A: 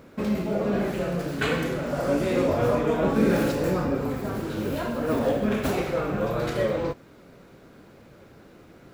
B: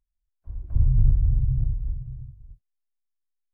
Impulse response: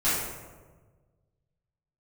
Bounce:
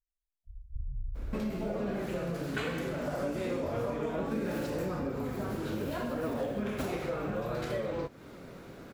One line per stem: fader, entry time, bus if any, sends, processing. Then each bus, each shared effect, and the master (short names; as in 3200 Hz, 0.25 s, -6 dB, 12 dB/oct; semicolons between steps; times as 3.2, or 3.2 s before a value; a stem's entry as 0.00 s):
+2.5 dB, 1.15 s, no send, vibrato 0.66 Hz 39 cents
-14.5 dB, 0.00 s, no send, comb 4.3 ms, depth 41%; spectral gate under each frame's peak -15 dB strong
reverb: off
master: compressor 4:1, threshold -33 dBFS, peak gain reduction 16 dB